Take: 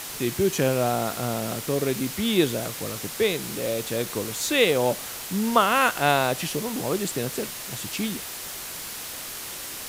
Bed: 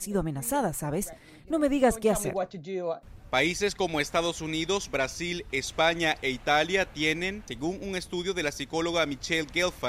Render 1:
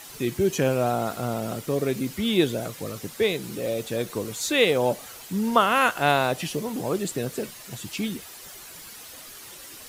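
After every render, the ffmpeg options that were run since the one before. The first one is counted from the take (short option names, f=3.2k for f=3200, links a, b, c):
-af "afftdn=nr=10:nf=-36"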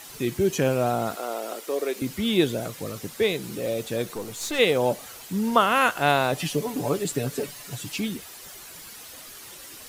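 -filter_complex "[0:a]asettb=1/sr,asplit=3[a][b][c];[a]atrim=end=1.154[d];[b]atrim=start=1.15:end=2.02,asetpts=PTS-STARTPTS,afade=t=in:d=0.004:c=qsin,afade=t=out:st=0.866:d=0.004:c=qsin,highpass=f=350:w=0.5412,highpass=f=350:w=1.3066[e];[c]atrim=start=2.016[f];[d][e]acrossfade=d=0.004:c1=hsin:c2=qsin[g];[g][f]acrossfade=d=0.004:c1=qsin:c2=hsin,asplit=3[h][i][j];[h]afade=t=out:st=4.13:d=0.02[k];[i]aeval=exprs='(tanh(15.8*val(0)+0.5)-tanh(0.5))/15.8':c=same,afade=t=in:st=4.13:d=0.02,afade=t=out:st=4.58:d=0.02[l];[j]afade=t=in:st=4.58:d=0.02[m];[k][l][m]amix=inputs=3:normalize=0,asettb=1/sr,asplit=3[n][o][p];[n]atrim=end=6.324[q];[o]atrim=start=6.32:end=8,asetpts=PTS-STARTPTS,afade=t=in:d=0.004:c=qsin,afade=t=out:st=1.676:d=0.004:c=qsin,aecho=1:1:7:0.65,atrim=end_sample=74088[r];[p]atrim=start=7.996[s];[q][r]acrossfade=d=0.004:c1=hsin:c2=qsin[t];[t][s]acrossfade=d=0.004:c1=qsin:c2=hsin"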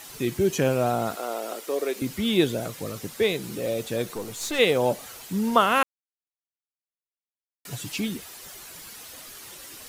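-filter_complex "[0:a]asplit=3[a][b][c];[a]atrim=end=5.83,asetpts=PTS-STARTPTS,afade=t=out:st=5.826:d=0.004:c=hsin[d];[b]atrim=start=5.83:end=7.65,asetpts=PTS-STARTPTS,volume=0[e];[c]atrim=start=7.65,asetpts=PTS-STARTPTS,afade=t=in:d=0.004:c=hsin[f];[d][e][f]concat=n=3:v=0:a=1"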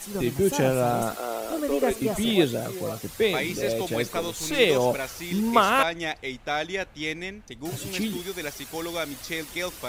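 -filter_complex "[1:a]volume=-4dB[a];[0:a][a]amix=inputs=2:normalize=0"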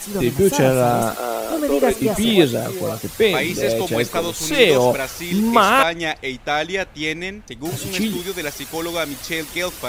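-af "volume=7dB,alimiter=limit=-1dB:level=0:latency=1"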